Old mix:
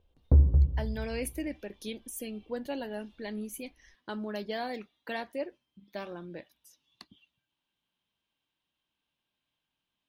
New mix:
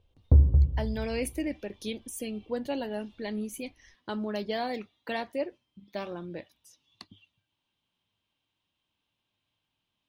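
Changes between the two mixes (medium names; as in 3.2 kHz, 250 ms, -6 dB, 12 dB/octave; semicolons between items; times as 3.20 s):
speech +3.5 dB; master: add graphic EQ with 31 bands 100 Hz +11 dB, 1.6 kHz -4 dB, 12.5 kHz -9 dB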